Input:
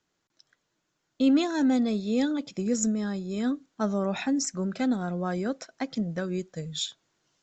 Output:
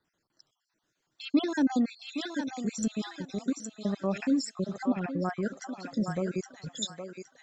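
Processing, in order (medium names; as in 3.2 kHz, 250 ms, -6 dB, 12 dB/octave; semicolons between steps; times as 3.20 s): random holes in the spectrogram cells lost 52%; thinning echo 816 ms, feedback 32%, high-pass 620 Hz, level -3.5 dB; 4.76–5.43 s: low-pass that closes with the level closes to 2.6 kHz, closed at -27 dBFS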